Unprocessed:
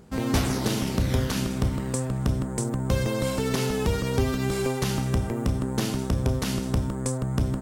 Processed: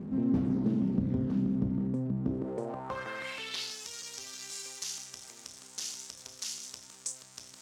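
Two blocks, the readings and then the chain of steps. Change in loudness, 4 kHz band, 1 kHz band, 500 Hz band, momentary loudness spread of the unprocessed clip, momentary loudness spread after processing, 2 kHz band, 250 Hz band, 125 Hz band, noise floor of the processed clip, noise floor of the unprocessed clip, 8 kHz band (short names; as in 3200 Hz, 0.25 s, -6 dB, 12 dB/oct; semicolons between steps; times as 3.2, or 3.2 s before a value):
-7.5 dB, -6.0 dB, -11.5 dB, -13.0 dB, 3 LU, 15 LU, -9.0 dB, -4.5 dB, -12.0 dB, -53 dBFS, -31 dBFS, -4.0 dB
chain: zero-crossing step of -29.5 dBFS; band-pass sweep 220 Hz -> 6200 Hz, 2.15–3.82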